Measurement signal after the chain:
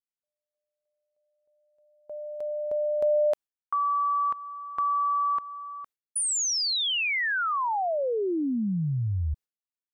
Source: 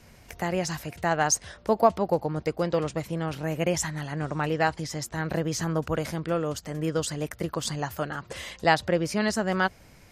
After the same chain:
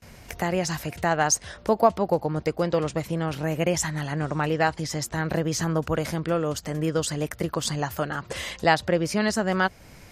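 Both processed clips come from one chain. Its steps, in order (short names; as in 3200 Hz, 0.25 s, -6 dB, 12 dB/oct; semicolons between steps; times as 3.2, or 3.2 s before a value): gate with hold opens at -45 dBFS; in parallel at -0.5 dB: compressor, threshold -34 dBFS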